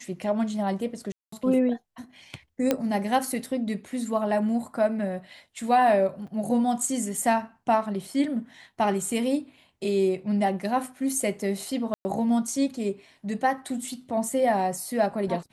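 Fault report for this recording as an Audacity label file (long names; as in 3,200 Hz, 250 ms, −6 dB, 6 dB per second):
1.120000	1.320000	drop-out 204 ms
2.710000	2.710000	click −9 dBFS
6.270000	6.280000	drop-out 5.5 ms
11.940000	12.050000	drop-out 110 ms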